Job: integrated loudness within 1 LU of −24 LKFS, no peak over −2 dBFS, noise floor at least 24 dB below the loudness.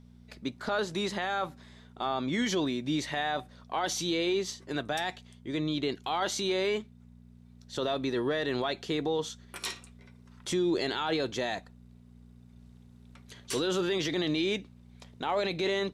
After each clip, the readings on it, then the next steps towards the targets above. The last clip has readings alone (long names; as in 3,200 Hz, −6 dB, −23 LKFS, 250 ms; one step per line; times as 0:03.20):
mains hum 60 Hz; hum harmonics up to 240 Hz; level of the hum −51 dBFS; integrated loudness −31.5 LKFS; sample peak −17.5 dBFS; target loudness −24.0 LKFS
→ hum removal 60 Hz, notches 4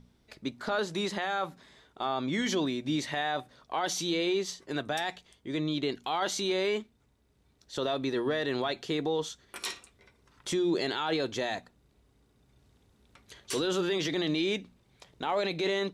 mains hum none found; integrated loudness −31.5 LKFS; sample peak −17.5 dBFS; target loudness −24.0 LKFS
→ level +7.5 dB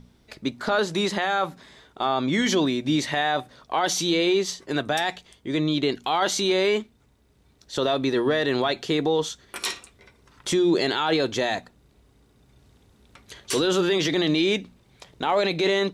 integrated loudness −24.0 LKFS; sample peak −10.0 dBFS; background noise floor −60 dBFS